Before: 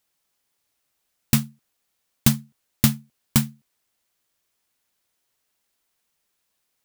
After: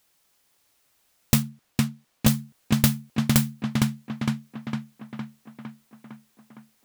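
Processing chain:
0:01.42–0:02.28: high-shelf EQ 5,900 Hz −6.5 dB
on a send: tape delay 458 ms, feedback 70%, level −7 dB, low-pass 3,300 Hz
on the sum: hard clipping −12 dBFS, distortion −11 dB
downward compressor 6 to 1, threshold −24 dBFS, peak gain reduction 9.5 dB
level +8 dB

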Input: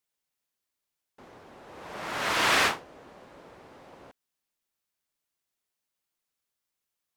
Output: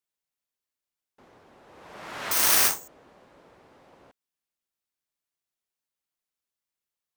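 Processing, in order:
0:02.31–0:02.88: bad sample-rate conversion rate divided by 6×, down none, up zero stuff
level −5 dB

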